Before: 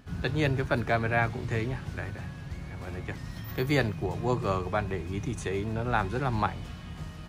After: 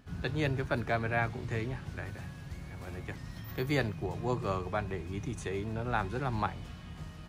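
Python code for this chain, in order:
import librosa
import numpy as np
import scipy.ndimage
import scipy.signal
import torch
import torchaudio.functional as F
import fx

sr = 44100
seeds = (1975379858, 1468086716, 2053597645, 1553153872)

y = fx.high_shelf(x, sr, hz=fx.line((2.05, 5900.0), (3.14, 9400.0)), db=7.5, at=(2.05, 3.14), fade=0.02)
y = y * librosa.db_to_amplitude(-4.5)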